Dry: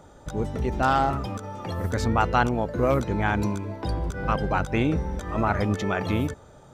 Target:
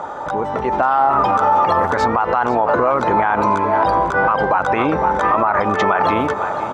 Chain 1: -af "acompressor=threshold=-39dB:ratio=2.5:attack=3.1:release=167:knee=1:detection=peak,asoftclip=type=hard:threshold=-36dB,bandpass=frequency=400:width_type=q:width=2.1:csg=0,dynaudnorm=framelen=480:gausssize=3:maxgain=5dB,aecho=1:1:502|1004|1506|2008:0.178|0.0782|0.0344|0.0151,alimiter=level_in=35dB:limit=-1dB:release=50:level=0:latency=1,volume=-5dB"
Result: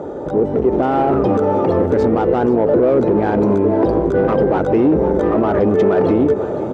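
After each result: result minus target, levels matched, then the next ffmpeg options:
hard clipping: distortion +36 dB; 1,000 Hz band −9.5 dB
-af "acompressor=threshold=-39dB:ratio=2.5:attack=3.1:release=167:knee=1:detection=peak,asoftclip=type=hard:threshold=-25.5dB,bandpass=frequency=400:width_type=q:width=2.1:csg=0,dynaudnorm=framelen=480:gausssize=3:maxgain=5dB,aecho=1:1:502|1004|1506|2008:0.178|0.0782|0.0344|0.0151,alimiter=level_in=35dB:limit=-1dB:release=50:level=0:latency=1,volume=-5dB"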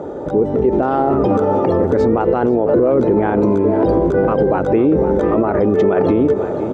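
1,000 Hz band −9.5 dB
-af "acompressor=threshold=-39dB:ratio=2.5:attack=3.1:release=167:knee=1:detection=peak,asoftclip=type=hard:threshold=-25.5dB,bandpass=frequency=1000:width_type=q:width=2.1:csg=0,dynaudnorm=framelen=480:gausssize=3:maxgain=5dB,aecho=1:1:502|1004|1506|2008:0.178|0.0782|0.0344|0.0151,alimiter=level_in=35dB:limit=-1dB:release=50:level=0:latency=1,volume=-5dB"

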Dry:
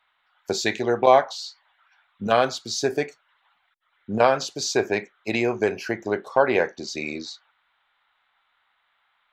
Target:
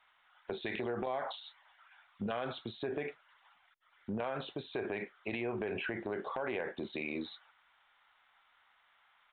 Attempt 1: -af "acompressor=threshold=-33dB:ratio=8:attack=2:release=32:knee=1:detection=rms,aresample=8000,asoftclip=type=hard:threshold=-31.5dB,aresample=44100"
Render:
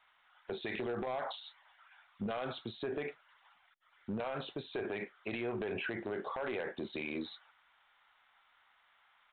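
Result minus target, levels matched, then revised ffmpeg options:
hard clipping: distortion +31 dB
-af "acompressor=threshold=-33dB:ratio=8:attack=2:release=32:knee=1:detection=rms,aresample=8000,asoftclip=type=hard:threshold=-24.5dB,aresample=44100"

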